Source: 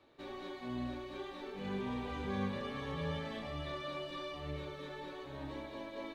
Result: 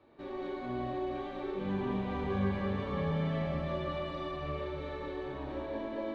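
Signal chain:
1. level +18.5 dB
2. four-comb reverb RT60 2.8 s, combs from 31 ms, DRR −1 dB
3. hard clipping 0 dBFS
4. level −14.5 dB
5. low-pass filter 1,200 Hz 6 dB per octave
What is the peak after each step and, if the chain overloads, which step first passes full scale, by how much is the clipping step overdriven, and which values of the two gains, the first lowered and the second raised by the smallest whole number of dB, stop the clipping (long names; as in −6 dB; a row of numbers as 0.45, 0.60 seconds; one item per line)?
−6.5, −5.0, −5.0, −19.5, −21.0 dBFS
no step passes full scale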